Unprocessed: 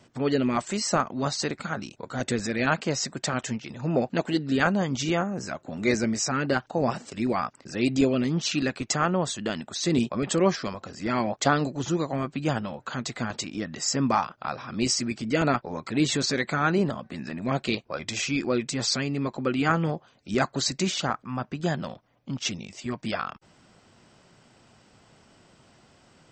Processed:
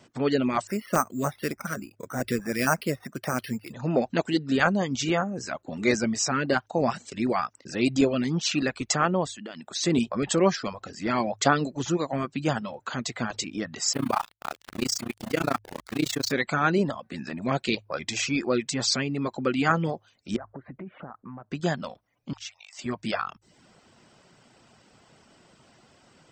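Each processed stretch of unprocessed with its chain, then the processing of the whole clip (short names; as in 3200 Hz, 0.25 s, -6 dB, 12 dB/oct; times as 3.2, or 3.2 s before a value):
0.67–3.73 LFO notch square 3.5 Hz 830–3200 Hz + careless resampling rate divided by 6×, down filtered, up hold
9.26–9.75 HPF 130 Hz + notch 6000 Hz, Q 20 + compressor 3:1, threshold -38 dBFS
13.93–16.32 sample gate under -31 dBFS + AM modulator 29 Hz, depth 95%
20.36–21.51 Bessel low-pass 1100 Hz, order 8 + compressor 5:1, threshold -37 dBFS
22.33–22.79 steep high-pass 770 Hz + compressor 2:1, threshold -45 dBFS
whole clip: reverb removal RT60 0.51 s; low shelf 110 Hz -5 dB; de-hum 52.39 Hz, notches 2; gain +1.5 dB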